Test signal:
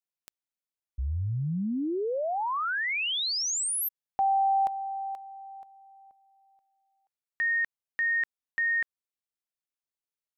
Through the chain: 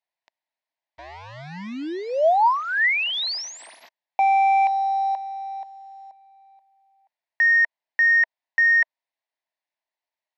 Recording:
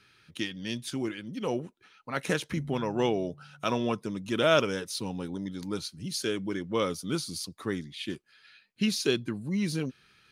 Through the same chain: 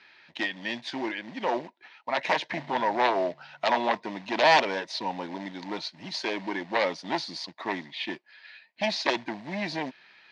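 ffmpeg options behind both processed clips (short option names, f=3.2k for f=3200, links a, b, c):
-af "aeval=exprs='0.376*(cos(1*acos(clip(val(0)/0.376,-1,1)))-cos(1*PI/2))+0.168*(cos(7*acos(clip(val(0)/0.376,-1,1)))-cos(7*PI/2))':c=same,acrusher=bits=4:mode=log:mix=0:aa=0.000001,highpass=370,equalizer=f=440:t=q:w=4:g=-8,equalizer=f=650:t=q:w=4:g=9,equalizer=f=930:t=q:w=4:g=9,equalizer=f=1.3k:t=q:w=4:g=-9,equalizer=f=1.9k:t=q:w=4:g=7,equalizer=f=3.2k:t=q:w=4:g=-3,lowpass=f=4.5k:w=0.5412,lowpass=f=4.5k:w=1.3066"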